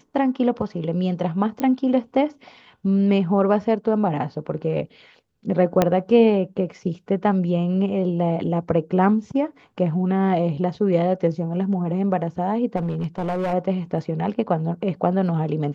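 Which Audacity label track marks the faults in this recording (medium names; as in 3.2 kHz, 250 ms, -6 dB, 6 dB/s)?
1.600000	1.600000	pop -13 dBFS
5.820000	5.820000	pop -4 dBFS
12.760000	13.540000	clipped -20.5 dBFS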